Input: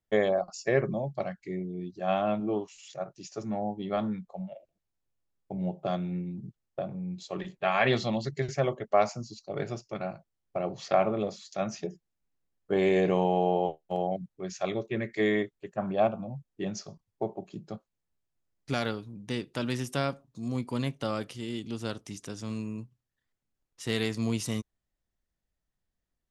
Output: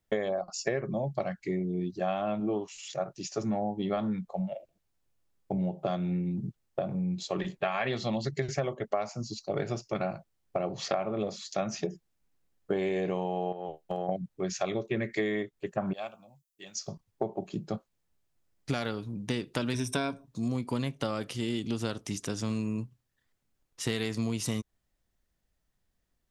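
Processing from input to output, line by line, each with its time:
13.52–14.09 compressor 3:1, threshold -36 dBFS
15.93–16.88 pre-emphasis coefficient 0.97
19.73–20.26 ripple EQ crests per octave 1.6, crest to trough 12 dB
whole clip: compressor 12:1, threshold -33 dBFS; gain +6.5 dB

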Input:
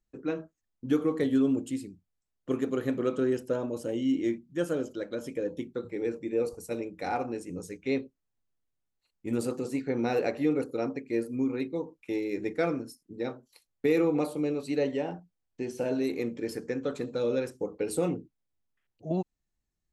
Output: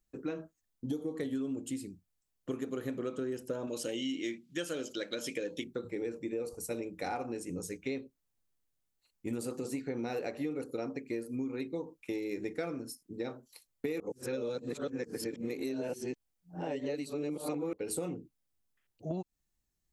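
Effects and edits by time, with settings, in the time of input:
0.85–1.16 spectral gain 970–3100 Hz -13 dB
3.67–5.64 weighting filter D
14–17.73 reverse
whole clip: high shelf 5600 Hz +7.5 dB; compressor, threshold -33 dBFS

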